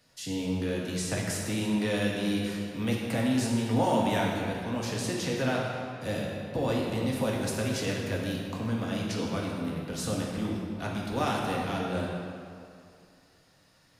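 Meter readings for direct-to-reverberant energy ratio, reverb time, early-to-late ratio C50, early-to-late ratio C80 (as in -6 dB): -3.0 dB, 2.4 s, 0.0 dB, 1.5 dB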